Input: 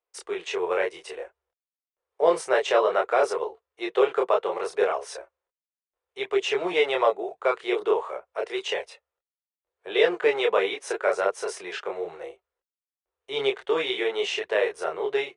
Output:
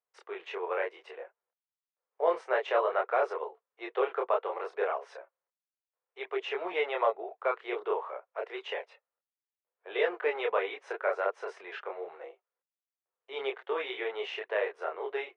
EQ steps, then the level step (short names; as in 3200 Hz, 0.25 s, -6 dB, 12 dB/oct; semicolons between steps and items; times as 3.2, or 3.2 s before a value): BPF 520–2200 Hz; -4.0 dB